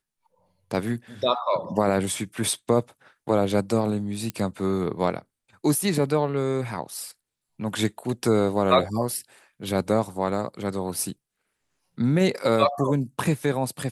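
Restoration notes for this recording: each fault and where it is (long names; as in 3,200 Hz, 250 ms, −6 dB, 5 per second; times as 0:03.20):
0:04.30: click −14 dBFS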